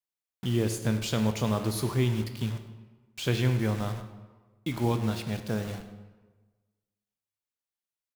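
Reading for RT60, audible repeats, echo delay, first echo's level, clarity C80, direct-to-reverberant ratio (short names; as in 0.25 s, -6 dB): 1.3 s, 1, 98 ms, -16.5 dB, 10.5 dB, 7.5 dB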